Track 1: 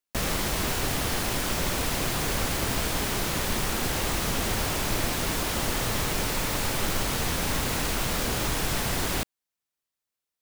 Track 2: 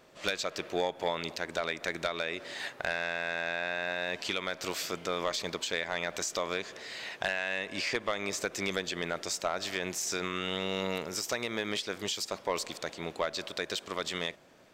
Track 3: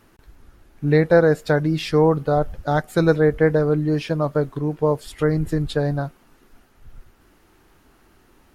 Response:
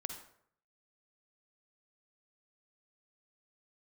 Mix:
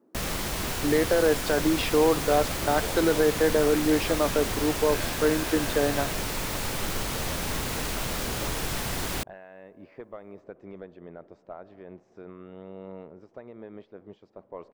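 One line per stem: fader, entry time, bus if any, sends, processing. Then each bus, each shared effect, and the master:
−3.0 dB, 0.00 s, no bus, no send, no processing
−6.5 dB, 2.05 s, bus A, no send, no processing
0.0 dB, 0.00 s, bus A, no send, high-pass filter 250 Hz 24 dB per octave
bus A: 0.0 dB, low-pass that shuts in the quiet parts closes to 420 Hz, open at −19 dBFS; brickwall limiter −13.5 dBFS, peak gain reduction 10.5 dB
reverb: not used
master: no processing

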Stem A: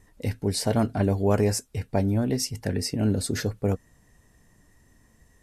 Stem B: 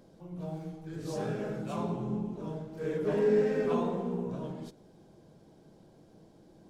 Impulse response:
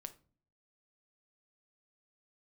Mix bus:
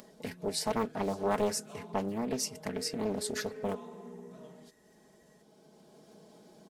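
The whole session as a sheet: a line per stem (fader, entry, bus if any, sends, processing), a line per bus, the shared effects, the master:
−6.0 dB, 0.00 s, no send, no processing
−4.0 dB, 0.00 s, no send, upward compression, threshold −41 dBFS; high-shelf EQ 4,800 Hz +7 dB; downward compressor, threshold −32 dBFS, peak gain reduction 10 dB; automatic ducking −6 dB, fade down 0.30 s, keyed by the first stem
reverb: not used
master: high-pass filter 320 Hz 6 dB per octave; comb filter 4.7 ms, depth 63%; highs frequency-modulated by the lows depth 0.64 ms

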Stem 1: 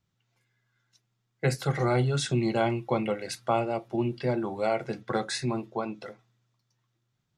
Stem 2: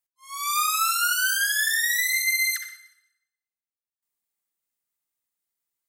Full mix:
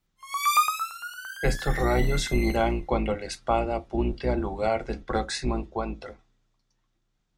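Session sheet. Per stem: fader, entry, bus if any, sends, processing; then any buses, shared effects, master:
+1.0 dB, 0.00 s, no send, sub-octave generator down 2 octaves, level +2 dB; low-pass filter 9,700 Hz 24 dB per octave; parametric band 110 Hz −10 dB 0.66 octaves
+1.5 dB, 0.00 s, no send, high-shelf EQ 4,200 Hz −5.5 dB; auto-filter high-pass saw up 8.8 Hz 1,000–2,400 Hz; automatic ducking −19 dB, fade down 0.40 s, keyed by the first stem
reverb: not used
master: parametric band 760 Hz +2.5 dB 0.22 octaves

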